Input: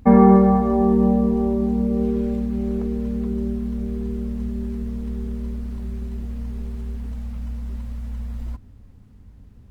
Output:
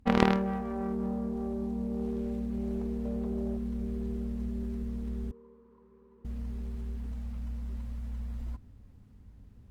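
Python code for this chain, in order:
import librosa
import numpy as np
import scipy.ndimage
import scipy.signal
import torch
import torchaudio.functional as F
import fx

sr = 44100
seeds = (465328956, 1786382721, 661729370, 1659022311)

y = fx.tracing_dist(x, sr, depth_ms=0.34)
y = fx.peak_eq(y, sr, hz=650.0, db=13.0, octaves=0.83, at=(3.05, 3.57))
y = fx.rider(y, sr, range_db=4, speed_s=0.5)
y = fx.cheby_harmonics(y, sr, harmonics=(3, 5), levels_db=(-7, -18), full_scale_db=-5.0)
y = fx.double_bandpass(y, sr, hz=680.0, octaves=1.1, at=(5.31, 6.25))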